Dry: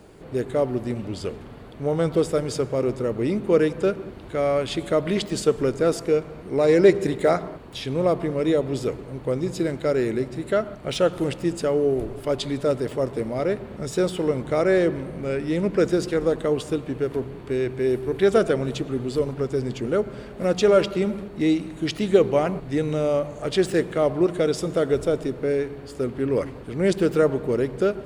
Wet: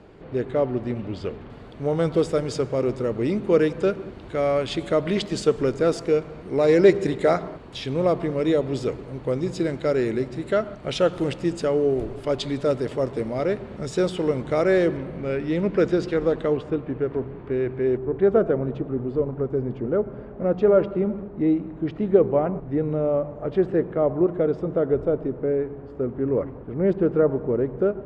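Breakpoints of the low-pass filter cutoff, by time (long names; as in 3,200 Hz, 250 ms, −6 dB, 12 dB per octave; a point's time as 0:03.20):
3,500 Hz
from 0:01.50 6,900 Hz
from 0:14.97 4,000 Hz
from 0:16.57 1,900 Hz
from 0:17.97 1,100 Hz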